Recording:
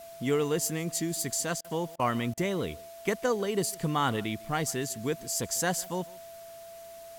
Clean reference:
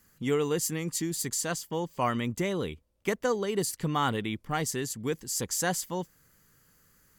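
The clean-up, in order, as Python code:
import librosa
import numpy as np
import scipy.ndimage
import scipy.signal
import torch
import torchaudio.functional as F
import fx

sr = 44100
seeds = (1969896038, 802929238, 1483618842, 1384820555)

y = fx.notch(x, sr, hz=670.0, q=30.0)
y = fx.fix_interpolate(y, sr, at_s=(1.61, 1.96, 2.34), length_ms=33.0)
y = fx.noise_reduce(y, sr, print_start_s=6.51, print_end_s=7.01, reduce_db=17.0)
y = fx.fix_echo_inverse(y, sr, delay_ms=151, level_db=-23.5)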